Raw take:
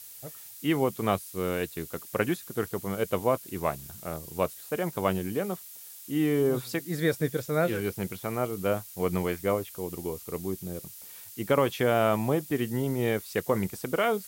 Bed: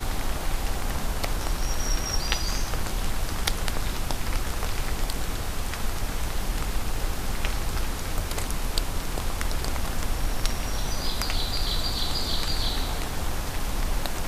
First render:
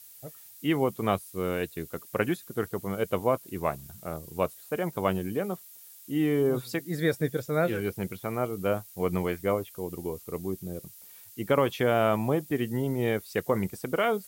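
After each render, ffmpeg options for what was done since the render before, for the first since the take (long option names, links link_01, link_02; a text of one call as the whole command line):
ffmpeg -i in.wav -af "afftdn=noise_reduction=6:noise_floor=-46" out.wav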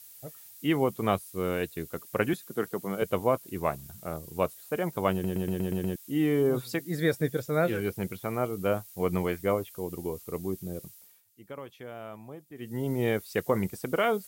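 ffmpeg -i in.wav -filter_complex "[0:a]asettb=1/sr,asplit=3[link_01][link_02][link_03];[link_01]atrim=end=2.334[link_04];[link_02]atrim=start=2.33:end=3.02,asetpts=PTS-STARTPTS,afade=type=in:duration=0.004:curve=qsin,afade=type=out:start_time=0.686:duration=0.004:curve=qsin,highpass=frequency=140:width=0.5412,highpass=frequency=140:width=1.3066[link_05];[link_03]atrim=start=3.016[link_06];[link_04][link_05]acrossfade=duration=0.004:curve1=hsin:curve2=qsin[link_07];[link_07][link_06]acrossfade=duration=0.004:curve1=qsin:curve2=hsin,asplit=10[link_08][link_09][link_10][link_11][link_12][link_13][link_14][link_15][link_16][link_17];[link_08]atrim=end=5.242[link_18];[link_09]atrim=start=5.118:end=5.242[link_19];[link_10]atrim=start=5.118:end=5.242[link_20];[link_11]atrim=start=5.118:end=5.242[link_21];[link_12]atrim=start=5.118:end=5.242[link_22];[link_13]atrim=start=5.118:end=5.242[link_23];[link_14]atrim=start=5.118:end=5.242[link_24];[link_15]atrim=start=5.958:end=11.23,asetpts=PTS-STARTPTS,afade=type=out:start_time=4.892:duration=0.38:silence=0.125893[link_25];[link_16]atrim=start=11.23:end=12.55,asetpts=PTS-STARTPTS,volume=-18dB[link_26];[link_17]atrim=start=12.55,asetpts=PTS-STARTPTS,afade=type=in:duration=0.38:silence=0.125893[link_27];[link_18][link_19]acrossfade=duration=0.004:curve1=hsin:curve2=hsin[link_28];[link_28][link_20]acrossfade=duration=0.004:curve1=hsin:curve2=hsin[link_29];[link_29][link_21]acrossfade=duration=0.004:curve1=hsin:curve2=hsin[link_30];[link_30][link_22]acrossfade=duration=0.004:curve1=hsin:curve2=hsin[link_31];[link_31][link_23]acrossfade=duration=0.004:curve1=hsin:curve2=hsin[link_32];[link_32][link_24]acrossfade=duration=0.004:curve1=hsin:curve2=hsin[link_33];[link_25][link_26][link_27]concat=n=3:v=0:a=1[link_34];[link_33][link_34]acrossfade=duration=0.004:curve1=hsin:curve2=hsin" out.wav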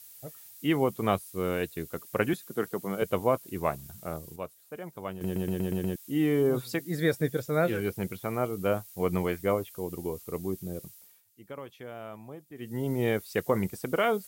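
ffmpeg -i in.wav -filter_complex "[0:a]asplit=3[link_01][link_02][link_03];[link_01]atrim=end=4.36,asetpts=PTS-STARTPTS,afade=type=out:start_time=3.93:duration=0.43:curve=log:silence=0.298538[link_04];[link_02]atrim=start=4.36:end=5.21,asetpts=PTS-STARTPTS,volume=-10.5dB[link_05];[link_03]atrim=start=5.21,asetpts=PTS-STARTPTS,afade=type=in:duration=0.43:curve=log:silence=0.298538[link_06];[link_04][link_05][link_06]concat=n=3:v=0:a=1" out.wav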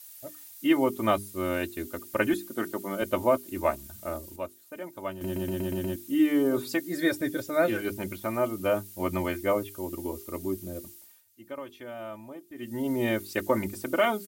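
ffmpeg -i in.wav -af "bandreject=frequency=50:width_type=h:width=6,bandreject=frequency=100:width_type=h:width=6,bandreject=frequency=150:width_type=h:width=6,bandreject=frequency=200:width_type=h:width=6,bandreject=frequency=250:width_type=h:width=6,bandreject=frequency=300:width_type=h:width=6,bandreject=frequency=350:width_type=h:width=6,bandreject=frequency=400:width_type=h:width=6,aecho=1:1:3.3:0.88" out.wav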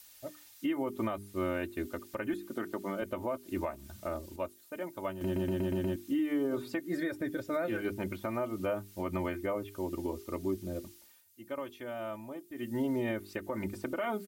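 ffmpeg -i in.wav -filter_complex "[0:a]acrossover=split=2800|6100[link_01][link_02][link_03];[link_01]acompressor=threshold=-25dB:ratio=4[link_04];[link_02]acompressor=threshold=-59dB:ratio=4[link_05];[link_03]acompressor=threshold=-58dB:ratio=4[link_06];[link_04][link_05][link_06]amix=inputs=3:normalize=0,alimiter=limit=-24dB:level=0:latency=1:release=203" out.wav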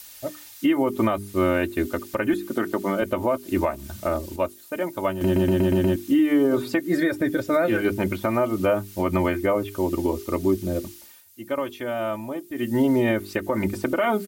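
ffmpeg -i in.wav -af "volume=12dB" out.wav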